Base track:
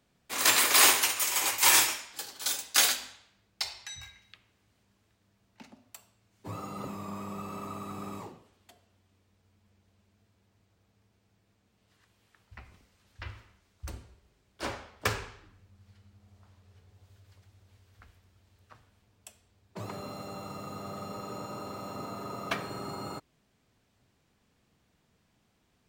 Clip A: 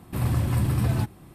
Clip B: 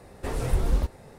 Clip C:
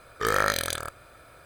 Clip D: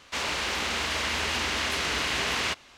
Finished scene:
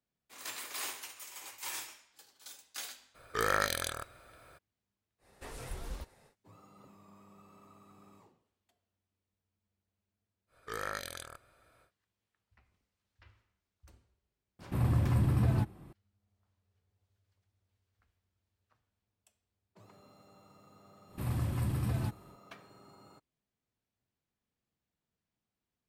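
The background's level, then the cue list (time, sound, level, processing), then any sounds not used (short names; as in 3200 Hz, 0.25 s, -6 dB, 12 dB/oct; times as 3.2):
base track -19.5 dB
3.14 add C -6 dB, fades 0.02 s
5.18 add B -13.5 dB, fades 0.10 s + tilt shelf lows -5.5 dB, about 780 Hz
10.47 add C -14.5 dB, fades 0.10 s + downsampling 32000 Hz
14.59 add A -4.5 dB + high shelf 2700 Hz -8.5 dB
21.05 add A -9.5 dB, fades 0.10 s
not used: D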